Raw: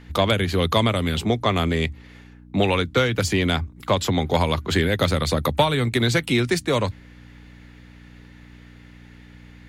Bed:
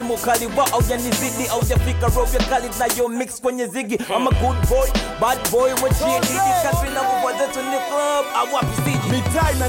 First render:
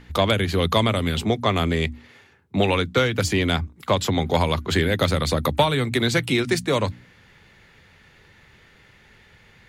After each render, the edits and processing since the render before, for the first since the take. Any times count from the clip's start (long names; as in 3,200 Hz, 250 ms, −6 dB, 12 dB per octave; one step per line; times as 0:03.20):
hum removal 60 Hz, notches 5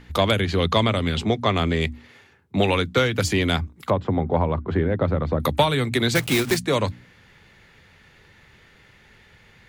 0:00.40–0:01.81: low-pass filter 6,800 Hz
0:03.90–0:05.40: low-pass filter 1,100 Hz
0:06.15–0:06.57: one scale factor per block 3 bits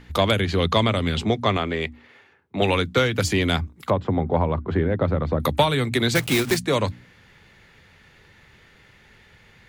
0:01.57–0:02.62: bass and treble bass −9 dB, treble −10 dB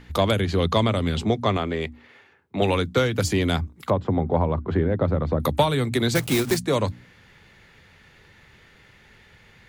dynamic equaliser 2,400 Hz, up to −5 dB, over −37 dBFS, Q 0.74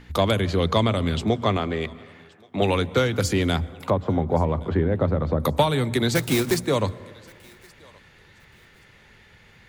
feedback echo with a high-pass in the loop 1,124 ms, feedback 26%, high-pass 790 Hz, level −24 dB
dense smooth reverb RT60 1.9 s, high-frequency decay 0.35×, pre-delay 105 ms, DRR 19.5 dB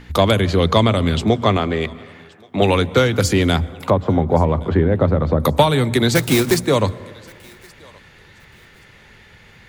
level +6 dB